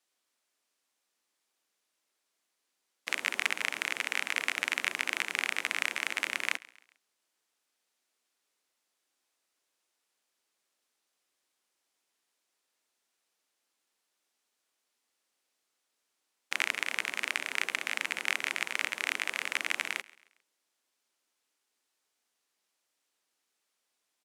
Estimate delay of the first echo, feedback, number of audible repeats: 0.135 s, 42%, 2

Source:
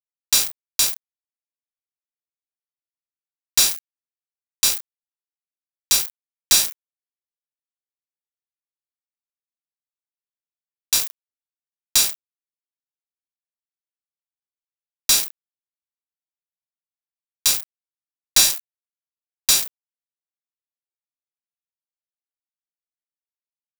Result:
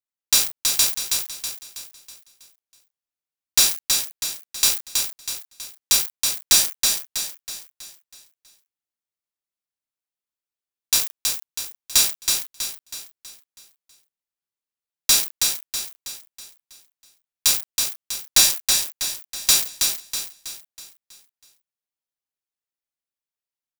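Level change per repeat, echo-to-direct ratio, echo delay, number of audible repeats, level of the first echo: -7.0 dB, -3.5 dB, 0.323 s, 5, -4.5 dB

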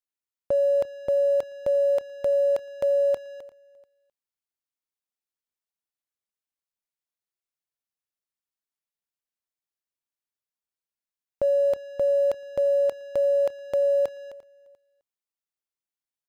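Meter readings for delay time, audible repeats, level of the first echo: 0.347 s, 2, -22.0 dB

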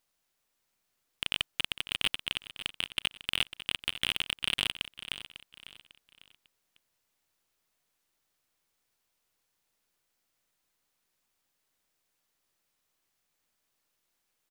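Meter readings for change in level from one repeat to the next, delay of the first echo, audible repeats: -9.5 dB, 0.549 s, 3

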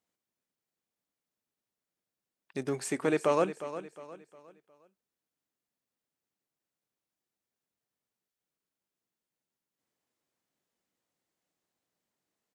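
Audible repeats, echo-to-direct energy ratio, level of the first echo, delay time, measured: 3, -12.0 dB, -12.5 dB, 0.358 s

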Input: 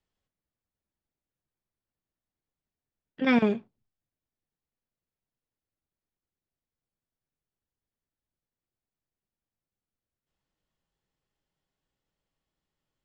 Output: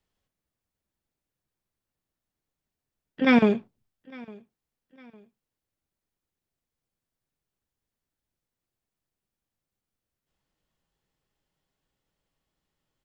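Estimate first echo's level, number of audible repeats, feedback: -24.0 dB, 2, 38%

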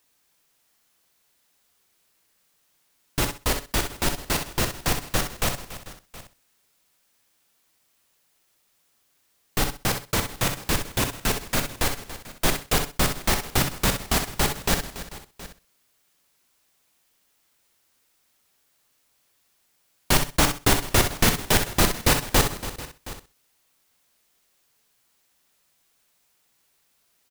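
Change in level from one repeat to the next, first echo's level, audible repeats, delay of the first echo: no steady repeat, -8.0 dB, 6, 63 ms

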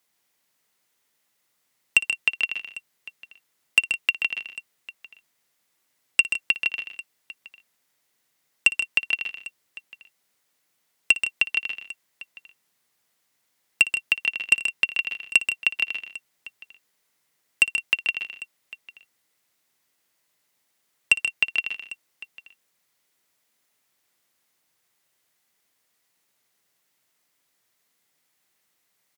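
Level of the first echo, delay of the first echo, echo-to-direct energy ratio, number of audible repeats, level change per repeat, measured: -17.0 dB, 58 ms, -6.5 dB, 4, no steady repeat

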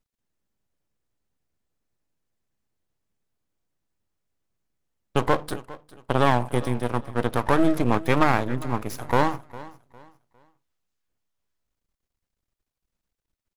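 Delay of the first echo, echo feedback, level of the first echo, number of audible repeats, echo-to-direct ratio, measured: 0.405 s, 31%, -19.0 dB, 2, -18.5 dB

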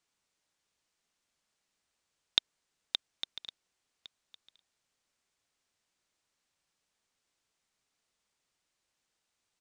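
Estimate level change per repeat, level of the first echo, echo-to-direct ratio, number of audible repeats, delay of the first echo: no steady repeat, -19.0 dB, -19.0 dB, 1, 1.109 s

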